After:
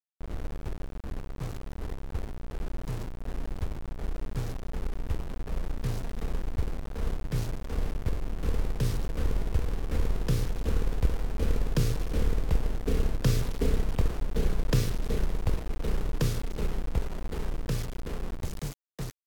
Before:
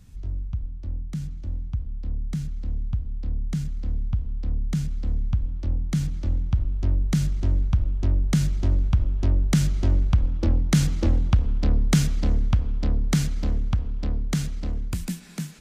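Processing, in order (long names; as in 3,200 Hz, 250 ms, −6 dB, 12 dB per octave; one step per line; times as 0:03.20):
sub-octave generator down 2 octaves, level +1 dB
parametric band 570 Hz +14 dB 0.57 octaves
bit reduction 5 bits
speed change −19%
one half of a high-frequency compander decoder only
level −8.5 dB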